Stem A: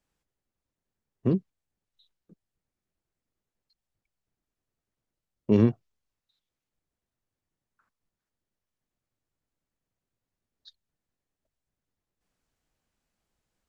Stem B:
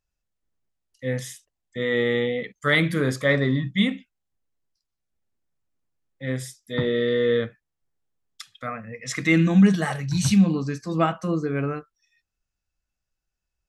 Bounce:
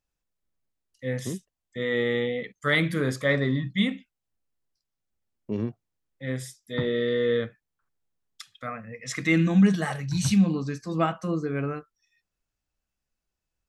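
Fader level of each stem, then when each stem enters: -9.0 dB, -3.0 dB; 0.00 s, 0.00 s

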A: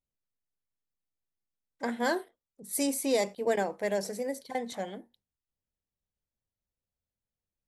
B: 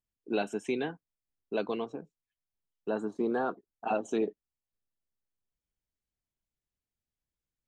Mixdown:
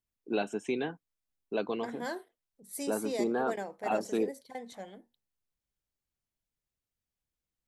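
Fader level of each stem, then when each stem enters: -8.5 dB, -0.5 dB; 0.00 s, 0.00 s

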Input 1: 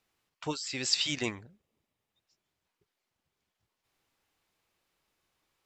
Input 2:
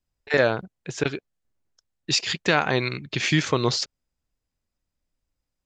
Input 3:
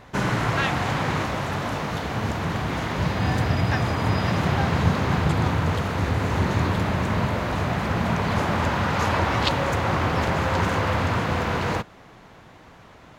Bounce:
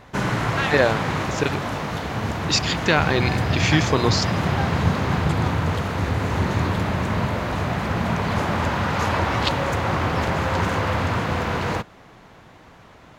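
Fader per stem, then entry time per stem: mute, +1.5 dB, +0.5 dB; mute, 0.40 s, 0.00 s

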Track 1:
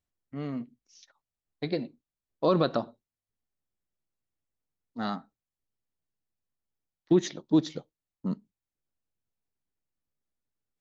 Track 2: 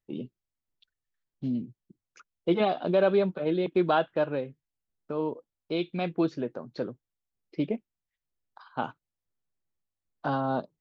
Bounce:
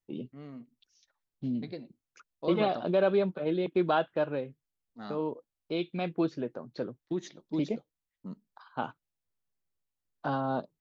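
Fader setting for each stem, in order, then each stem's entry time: -11.0 dB, -2.5 dB; 0.00 s, 0.00 s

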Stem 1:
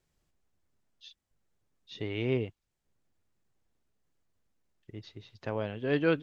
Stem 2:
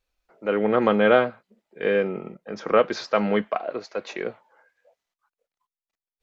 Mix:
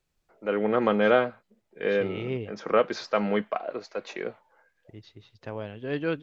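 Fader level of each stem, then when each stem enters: -2.0 dB, -3.5 dB; 0.00 s, 0.00 s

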